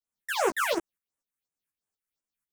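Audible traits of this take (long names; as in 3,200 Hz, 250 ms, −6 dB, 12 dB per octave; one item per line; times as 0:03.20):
phaser sweep stages 4, 2.8 Hz, lowest notch 610–4,500 Hz
tremolo saw up 4.1 Hz, depth 65%
a shimmering, thickened sound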